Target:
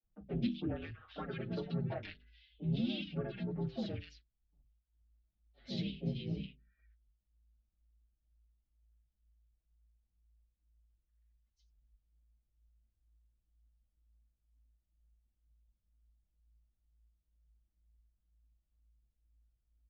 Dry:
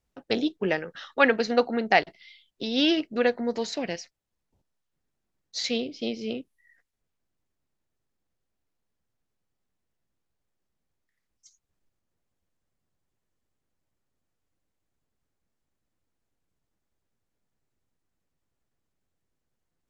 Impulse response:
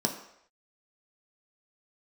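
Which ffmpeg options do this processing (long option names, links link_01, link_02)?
-filter_complex "[0:a]bandreject=frequency=50:width_type=h:width=6,bandreject=frequency=100:width_type=h:width=6,bandreject=frequency=150:width_type=h:width=6,bandreject=frequency=200:width_type=h:width=6,bandreject=frequency=250:width_type=h:width=6,bandreject=frequency=300:width_type=h:width=6,bandreject=frequency=350:width_type=h:width=6,bandreject=frequency=400:width_type=h:width=6,bandreject=frequency=450:width_type=h:width=6,bandreject=frequency=500:width_type=h:width=6,asplit=4[link_01][link_02][link_03][link_04];[link_02]asetrate=33038,aresample=44100,atempo=1.33484,volume=-16dB[link_05];[link_03]asetrate=37084,aresample=44100,atempo=1.18921,volume=-10dB[link_06];[link_04]asetrate=55563,aresample=44100,atempo=0.793701,volume=-10dB[link_07];[link_01][link_05][link_06][link_07]amix=inputs=4:normalize=0,acompressor=threshold=-24dB:ratio=6,equalizer=frequency=500:width_type=o:width=1:gain=-10,equalizer=frequency=1000:width_type=o:width=1:gain=-5,equalizer=frequency=2000:width_type=o:width=1:gain=-11,afreqshift=-57,lowpass=frequency=3300:width=0.5412,lowpass=frequency=3300:width=1.3066,lowshelf=frequency=280:gain=8,bandreject=frequency=990:width=6.1,acrossover=split=170|1700[link_08][link_09][link_10];[link_08]adelay=30[link_11];[link_10]adelay=130[link_12];[link_11][link_09][link_12]amix=inputs=3:normalize=0,asplit=2[link_13][link_14];[link_14]adelay=5.7,afreqshift=-2.1[link_15];[link_13][link_15]amix=inputs=2:normalize=1,volume=-2dB"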